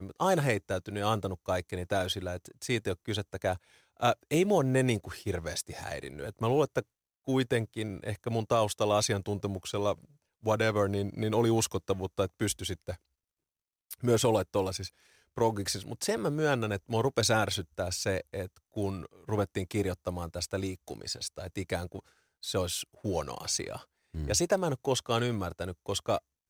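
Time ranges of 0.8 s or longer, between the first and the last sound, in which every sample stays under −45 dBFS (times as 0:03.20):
0:12.96–0:13.91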